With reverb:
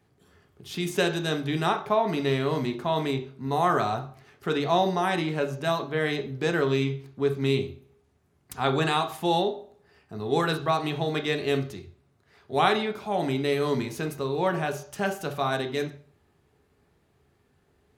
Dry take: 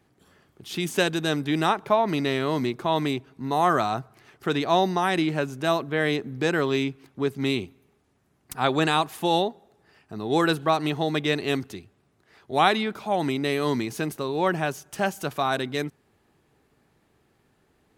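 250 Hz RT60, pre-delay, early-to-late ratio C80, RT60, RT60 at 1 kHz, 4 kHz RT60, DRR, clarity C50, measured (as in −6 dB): 0.50 s, 3 ms, 16.5 dB, 0.45 s, 0.45 s, 0.35 s, 5.0 dB, 12.0 dB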